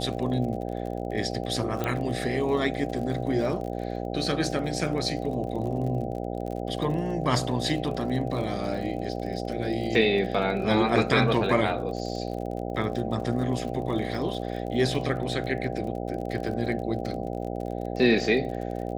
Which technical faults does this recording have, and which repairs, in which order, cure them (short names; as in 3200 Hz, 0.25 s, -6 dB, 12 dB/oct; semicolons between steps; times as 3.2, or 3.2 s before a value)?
buzz 60 Hz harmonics 13 -32 dBFS
crackle 42/s -35 dBFS
1.84 pop -15 dBFS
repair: de-click; de-hum 60 Hz, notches 13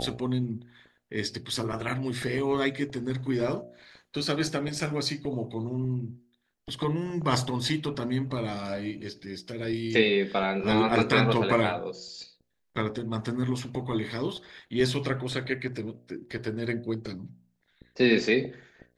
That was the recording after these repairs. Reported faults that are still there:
none